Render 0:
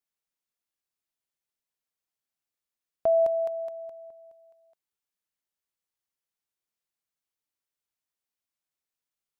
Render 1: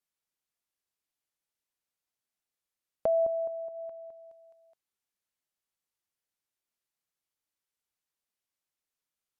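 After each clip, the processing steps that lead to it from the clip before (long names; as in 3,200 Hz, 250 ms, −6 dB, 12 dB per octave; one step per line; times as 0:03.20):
treble cut that deepens with the level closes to 580 Hz, closed at −32 dBFS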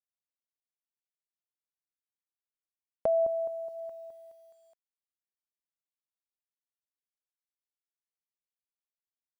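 bit reduction 12 bits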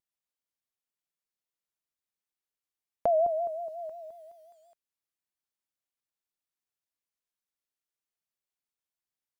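pitch vibrato 5.6 Hz 94 cents
level +1.5 dB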